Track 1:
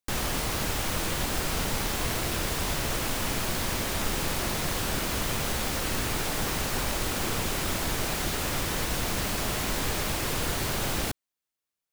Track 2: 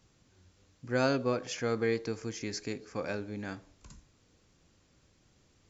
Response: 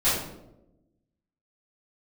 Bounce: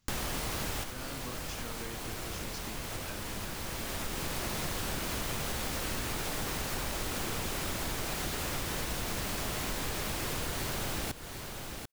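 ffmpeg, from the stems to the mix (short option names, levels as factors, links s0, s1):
-filter_complex "[0:a]volume=1.41,asplit=2[s0][s1];[s1]volume=0.168[s2];[1:a]equalizer=f=480:w=0.86:g=-9,acompressor=threshold=0.0178:ratio=6,volume=0.531,asplit=2[s3][s4];[s4]apad=whole_len=526093[s5];[s0][s5]sidechaincompress=threshold=0.00158:ratio=8:attack=6.5:release=936[s6];[s2]aecho=0:1:740:1[s7];[s6][s3][s7]amix=inputs=3:normalize=0,acompressor=threshold=0.0224:ratio=4"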